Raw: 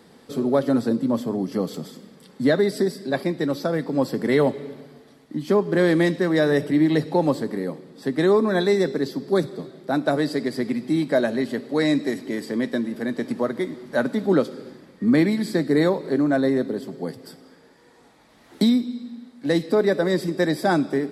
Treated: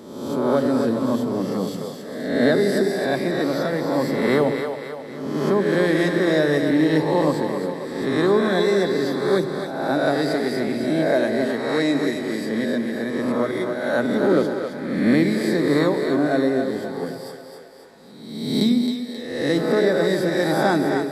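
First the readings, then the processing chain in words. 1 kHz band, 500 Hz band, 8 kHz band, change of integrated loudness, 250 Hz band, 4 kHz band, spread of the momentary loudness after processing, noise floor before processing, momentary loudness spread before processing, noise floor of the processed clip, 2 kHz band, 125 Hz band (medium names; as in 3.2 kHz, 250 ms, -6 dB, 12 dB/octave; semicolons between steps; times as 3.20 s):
+3.5 dB, +2.0 dB, +3.5 dB, +1.5 dB, +1.0 dB, +3.5 dB, 9 LU, -53 dBFS, 12 LU, -37 dBFS, +3.5 dB, +0.5 dB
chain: reverse spectral sustain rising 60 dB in 1.06 s; two-band feedback delay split 420 Hz, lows 93 ms, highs 267 ms, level -6.5 dB; trim -2 dB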